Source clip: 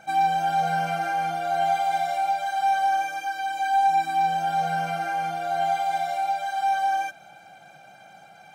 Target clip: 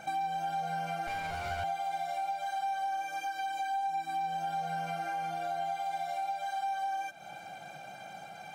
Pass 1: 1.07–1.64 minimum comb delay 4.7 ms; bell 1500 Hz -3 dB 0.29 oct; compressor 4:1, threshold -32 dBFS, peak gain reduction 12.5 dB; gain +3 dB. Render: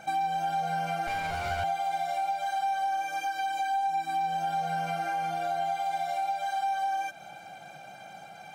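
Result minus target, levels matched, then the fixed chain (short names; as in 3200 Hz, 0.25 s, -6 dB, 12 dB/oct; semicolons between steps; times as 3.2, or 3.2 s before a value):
compressor: peak gain reduction -4.5 dB
1.07–1.64 minimum comb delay 4.7 ms; bell 1500 Hz -3 dB 0.29 oct; compressor 4:1, threshold -38 dBFS, peak gain reduction 17 dB; gain +3 dB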